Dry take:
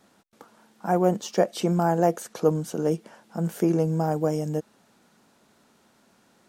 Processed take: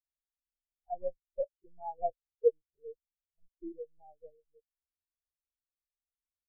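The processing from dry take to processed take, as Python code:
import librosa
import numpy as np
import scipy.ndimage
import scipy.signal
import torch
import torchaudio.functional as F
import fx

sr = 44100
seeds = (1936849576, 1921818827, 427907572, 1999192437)

y = fx.highpass(x, sr, hz=230.0, slope=6)
y = fx.low_shelf(y, sr, hz=450.0, db=-7.5)
y = fx.add_hum(y, sr, base_hz=60, snr_db=12)
y = fx.lpc_vocoder(y, sr, seeds[0], excitation='pitch_kept', order=10)
y = fx.spectral_expand(y, sr, expansion=4.0)
y = y * 10.0 ** (-3.5 / 20.0)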